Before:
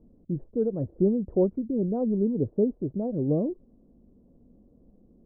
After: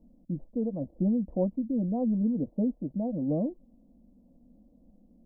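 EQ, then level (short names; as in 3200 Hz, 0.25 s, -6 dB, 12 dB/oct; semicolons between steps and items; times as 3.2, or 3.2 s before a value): fixed phaser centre 400 Hz, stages 6; 0.0 dB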